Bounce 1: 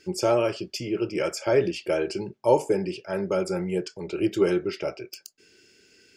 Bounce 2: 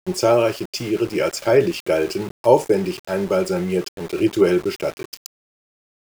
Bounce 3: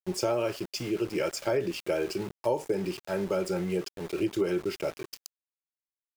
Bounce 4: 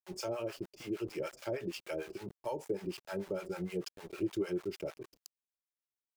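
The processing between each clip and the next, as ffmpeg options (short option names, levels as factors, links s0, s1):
-af "aeval=exprs='val(0)*gte(abs(val(0)),0.0133)':c=same,volume=2"
-af "acompressor=threshold=0.158:ratio=6,volume=0.422"
-filter_complex "[0:a]acrossover=split=630[s0][s1];[s0]aeval=exprs='val(0)*(1-1/2+1/2*cos(2*PI*6.6*n/s))':c=same[s2];[s1]aeval=exprs='val(0)*(1-1/2-1/2*cos(2*PI*6.6*n/s))':c=same[s3];[s2][s3]amix=inputs=2:normalize=0,volume=0.631"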